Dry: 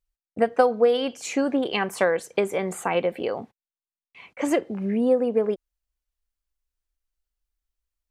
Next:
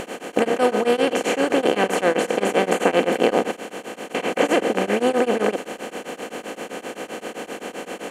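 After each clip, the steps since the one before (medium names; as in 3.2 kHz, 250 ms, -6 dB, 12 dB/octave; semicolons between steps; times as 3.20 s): spectral levelling over time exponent 0.2; tremolo of two beating tones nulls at 7.7 Hz; trim -2 dB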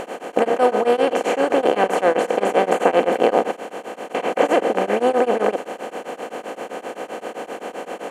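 peaking EQ 750 Hz +9.5 dB 2.1 oct; trim -5 dB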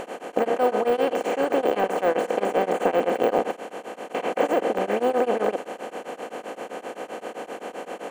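de-esser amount 80%; trim -4 dB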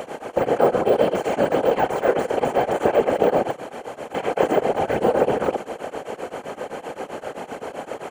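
comb 3.9 ms; whisper effect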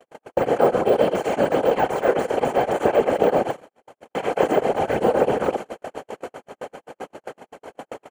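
gate -29 dBFS, range -49 dB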